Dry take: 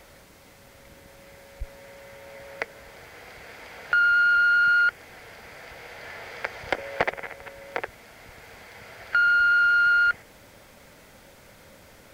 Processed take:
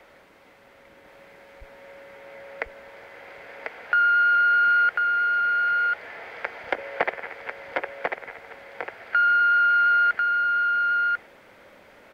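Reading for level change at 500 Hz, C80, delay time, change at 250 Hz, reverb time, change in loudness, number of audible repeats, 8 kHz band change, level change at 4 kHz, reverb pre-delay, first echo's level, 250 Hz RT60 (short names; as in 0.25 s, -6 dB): +1.5 dB, none, 1.044 s, -1.0 dB, none, +0.5 dB, 1, n/a, -2.0 dB, none, -3.5 dB, none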